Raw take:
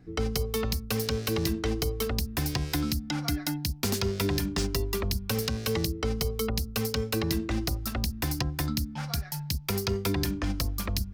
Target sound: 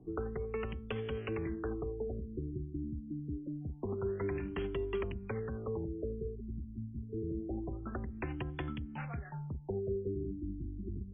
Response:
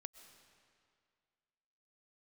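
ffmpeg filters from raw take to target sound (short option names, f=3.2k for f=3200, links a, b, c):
-filter_complex "[0:a]acrossover=split=110|1000[a][b][c];[a]acompressor=threshold=-39dB:ratio=4[d];[b]acompressor=threshold=-39dB:ratio=4[e];[c]acompressor=threshold=-34dB:ratio=4[f];[d][e][f]amix=inputs=3:normalize=0,equalizer=f=380:t=o:w=0.49:g=10,afftfilt=real='re*lt(b*sr/1024,350*pow(3500/350,0.5+0.5*sin(2*PI*0.26*pts/sr)))':imag='im*lt(b*sr/1024,350*pow(3500/350,0.5+0.5*sin(2*PI*0.26*pts/sr)))':win_size=1024:overlap=0.75,volume=-3.5dB"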